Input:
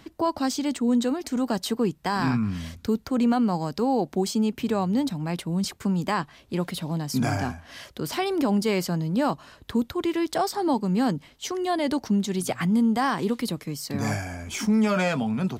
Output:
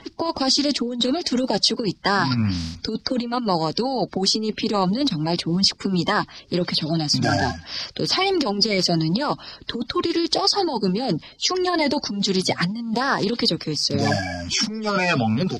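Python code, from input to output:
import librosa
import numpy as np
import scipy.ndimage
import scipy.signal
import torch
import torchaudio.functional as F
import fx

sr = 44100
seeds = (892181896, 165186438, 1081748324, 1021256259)

y = fx.spec_quant(x, sr, step_db=30)
y = fx.over_compress(y, sr, threshold_db=-25.0, ratio=-0.5)
y = fx.lowpass_res(y, sr, hz=4900.0, q=4.8)
y = y * librosa.db_to_amplitude(4.5)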